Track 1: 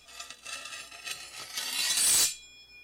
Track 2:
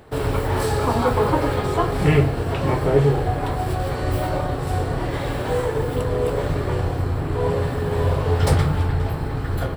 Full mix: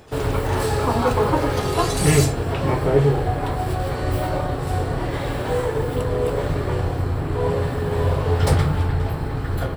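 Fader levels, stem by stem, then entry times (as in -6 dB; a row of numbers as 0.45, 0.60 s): -3.0, 0.0 dB; 0.00, 0.00 s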